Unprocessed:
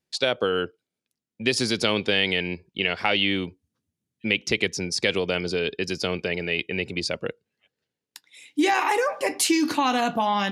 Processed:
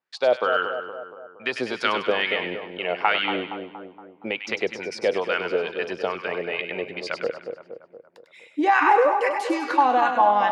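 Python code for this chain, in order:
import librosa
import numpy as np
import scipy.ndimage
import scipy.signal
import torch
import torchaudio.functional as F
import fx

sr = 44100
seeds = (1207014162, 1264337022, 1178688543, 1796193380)

y = fx.wah_lfo(x, sr, hz=2.3, low_hz=590.0, high_hz=1500.0, q=2.2)
y = fx.echo_split(y, sr, split_hz=1200.0, low_ms=234, high_ms=99, feedback_pct=52, wet_db=-7.0)
y = F.gain(torch.from_numpy(y), 8.5).numpy()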